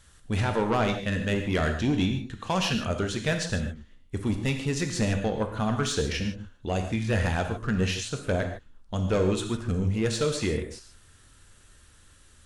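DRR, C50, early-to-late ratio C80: 4.5 dB, 7.0 dB, 9.0 dB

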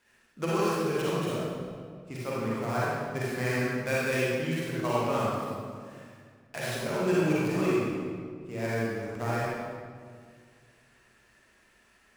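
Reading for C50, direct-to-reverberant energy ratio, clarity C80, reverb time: -5.0 dB, -8.0 dB, -2.0 dB, 2.0 s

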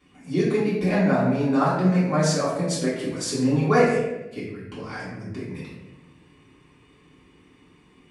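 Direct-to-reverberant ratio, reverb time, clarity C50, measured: -10.5 dB, 1.0 s, 1.0 dB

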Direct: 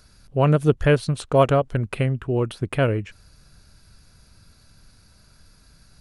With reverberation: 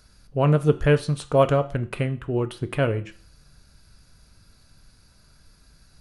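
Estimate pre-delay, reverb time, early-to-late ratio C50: 6 ms, 0.45 s, 16.5 dB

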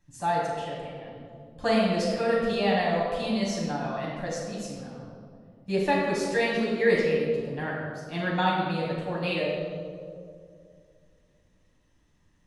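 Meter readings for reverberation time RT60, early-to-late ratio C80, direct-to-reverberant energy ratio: 2.3 s, 1.5 dB, -5.5 dB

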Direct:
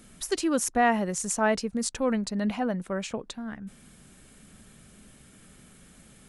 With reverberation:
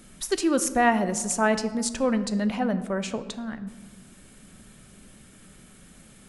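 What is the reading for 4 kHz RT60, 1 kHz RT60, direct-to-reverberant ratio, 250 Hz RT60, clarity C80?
0.75 s, 1.3 s, 10.5 dB, 1.8 s, 15.0 dB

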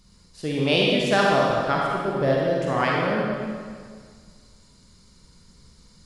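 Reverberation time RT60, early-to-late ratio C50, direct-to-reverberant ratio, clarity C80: 1.8 s, -2.0 dB, -3.5 dB, 0.5 dB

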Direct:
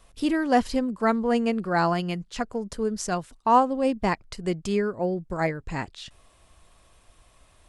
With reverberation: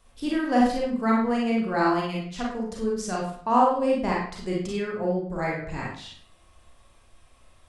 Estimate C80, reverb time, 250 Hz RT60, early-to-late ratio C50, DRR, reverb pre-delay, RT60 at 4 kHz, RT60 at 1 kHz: 6.0 dB, 0.55 s, 0.55 s, 1.0 dB, -4.0 dB, 32 ms, 0.40 s, 0.55 s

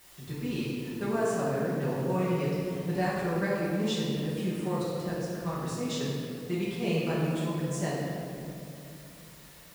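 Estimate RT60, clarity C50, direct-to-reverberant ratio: 2.7 s, -2.0 dB, -9.5 dB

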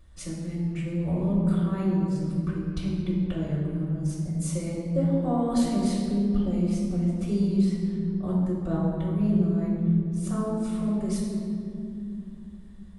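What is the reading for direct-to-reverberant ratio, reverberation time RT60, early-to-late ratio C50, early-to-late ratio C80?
-8.0 dB, 2.6 s, 0.0 dB, 1.5 dB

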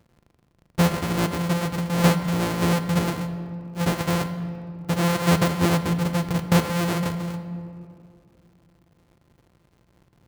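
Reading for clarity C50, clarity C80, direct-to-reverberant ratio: 10.5 dB, 11.5 dB, 9.0 dB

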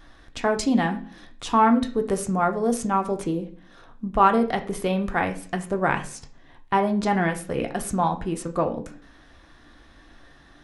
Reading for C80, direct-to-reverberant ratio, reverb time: 17.5 dB, 4.0 dB, 0.50 s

